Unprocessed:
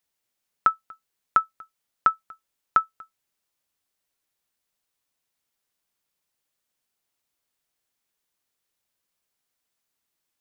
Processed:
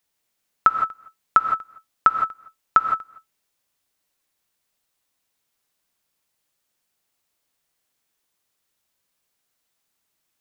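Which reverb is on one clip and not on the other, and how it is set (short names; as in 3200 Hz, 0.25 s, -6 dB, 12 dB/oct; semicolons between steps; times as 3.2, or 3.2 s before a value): non-linear reverb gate 0.19 s rising, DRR 5.5 dB; gain +4 dB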